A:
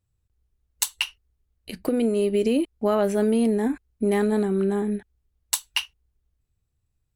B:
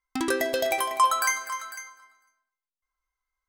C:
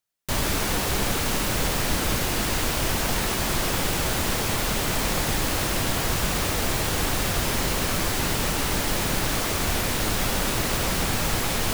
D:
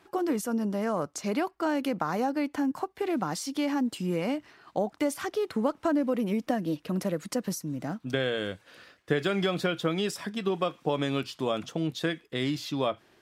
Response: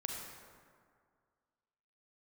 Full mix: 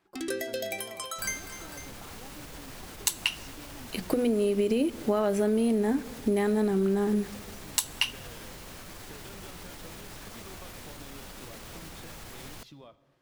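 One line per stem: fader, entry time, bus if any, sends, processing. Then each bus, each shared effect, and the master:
+1.0 dB, 2.25 s, send -18.5 dB, de-hum 82.59 Hz, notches 3
-5.0 dB, 0.00 s, no send, static phaser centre 400 Hz, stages 4
-18.0 dB, 0.90 s, send -23 dB, peak limiter -17 dBFS, peak gain reduction 6.5 dB
-14.0 dB, 0.00 s, send -12 dB, octave divider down 1 oct, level -5 dB; compression 6:1, threshold -35 dBFS, peak gain reduction 14 dB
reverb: on, RT60 2.0 s, pre-delay 33 ms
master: compression, threshold -22 dBFS, peak gain reduction 7 dB

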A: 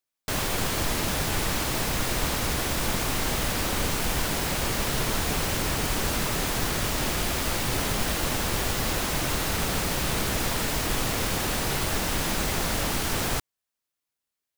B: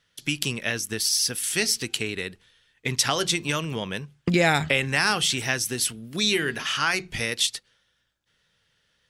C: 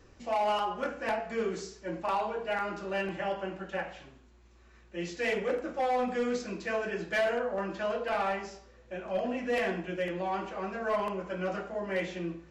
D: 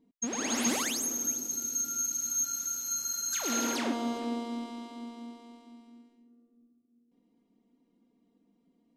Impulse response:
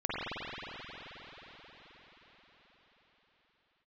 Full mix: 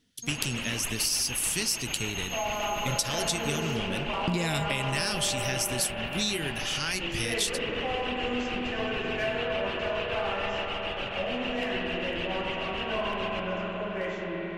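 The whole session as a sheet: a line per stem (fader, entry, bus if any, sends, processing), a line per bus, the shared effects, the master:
-11.0 dB, 0.00 s, send -9.5 dB, reverb removal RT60 1.5 s; resonant low-pass 2.8 kHz, resonance Q 8.6; tremolo of two beating tones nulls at 6.8 Hz
+2.0 dB, 0.00 s, no send, peaking EQ 980 Hz -15 dB 2.9 oct
-8.0 dB, 2.05 s, send -3.5 dB, none
-6.0 dB, 0.00 s, no send, compression 2:1, threshold -37 dBFS, peak gain reduction 7.5 dB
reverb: on, RT60 5.7 s, pre-delay 44 ms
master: compression, threshold -24 dBFS, peak gain reduction 7.5 dB

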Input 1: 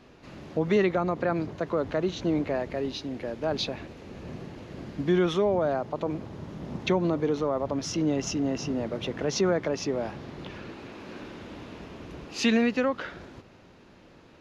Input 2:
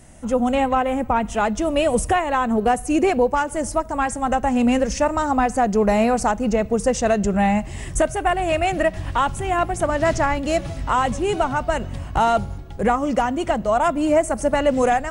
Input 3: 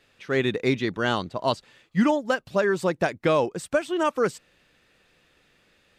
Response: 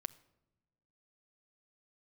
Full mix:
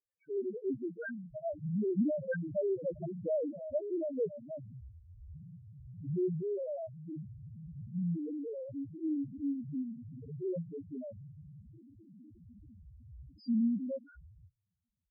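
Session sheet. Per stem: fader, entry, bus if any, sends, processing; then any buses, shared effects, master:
-5.0 dB, 1.05 s, send -21 dB, spectrogram pixelated in time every 100 ms; bass shelf 180 Hz +11.5 dB
mute
-5.5 dB, 0.00 s, send -10 dB, low-pass 3 kHz 12 dB/octave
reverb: on, pre-delay 6 ms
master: gate -48 dBFS, range -21 dB; loudest bins only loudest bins 1

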